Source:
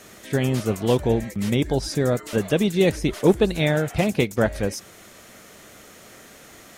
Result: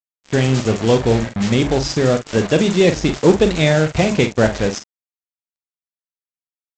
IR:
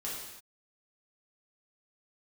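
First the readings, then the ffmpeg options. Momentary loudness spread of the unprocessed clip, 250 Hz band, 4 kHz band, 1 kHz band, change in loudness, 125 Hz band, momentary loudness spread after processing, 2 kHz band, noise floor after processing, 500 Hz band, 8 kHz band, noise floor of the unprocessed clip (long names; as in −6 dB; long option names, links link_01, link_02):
5 LU, +5.5 dB, +7.0 dB, +6.5 dB, +6.0 dB, +6.0 dB, 5 LU, +6.5 dB, below −85 dBFS, +5.5 dB, +6.0 dB, −47 dBFS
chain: -filter_complex "[0:a]bandreject=frequency=69.93:width_type=h:width=4,bandreject=frequency=139.86:width_type=h:width=4,bandreject=frequency=209.79:width_type=h:width=4,bandreject=frequency=279.72:width_type=h:width=4,acontrast=49,aresample=16000,acrusher=bits=3:mix=0:aa=0.5,aresample=44100,asplit=2[link_01][link_02];[link_02]adelay=45,volume=-9.5dB[link_03];[link_01][link_03]amix=inputs=2:normalize=0"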